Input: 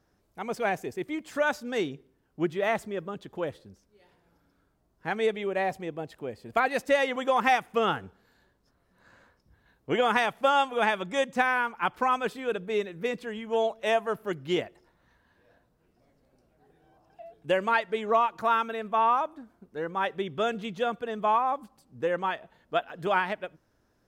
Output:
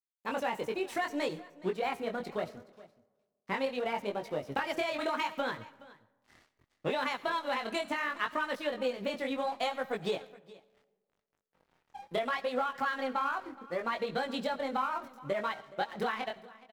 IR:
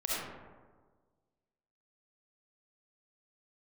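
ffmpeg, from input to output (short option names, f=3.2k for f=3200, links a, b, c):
-filter_complex "[0:a]aeval=exprs='if(lt(val(0),0),0.708*val(0),val(0))':c=same,highpass=f=52:w=0.5412,highpass=f=52:w=1.3066,bandreject=f=7.6k:w=13,bandreject=f=262.7:t=h:w=4,bandreject=f=525.4:t=h:w=4,bandreject=f=788.1:t=h:w=4,bandreject=f=1.0508k:t=h:w=4,bandreject=f=1.3135k:t=h:w=4,bandreject=f=1.5762k:t=h:w=4,acompressor=threshold=-34dB:ratio=8,aeval=exprs='sgn(val(0))*max(abs(val(0))-0.00106,0)':c=same,asetrate=52920,aresample=44100,flanger=delay=19:depth=7.5:speed=0.59,atempo=1.2,aecho=1:1:420:0.0944,asplit=2[a][b];[1:a]atrim=start_sample=2205,highshelf=f=2.5k:g=11.5,adelay=8[c];[b][c]afir=irnorm=-1:irlink=0,volume=-27.5dB[d];[a][d]amix=inputs=2:normalize=0,volume=8dB"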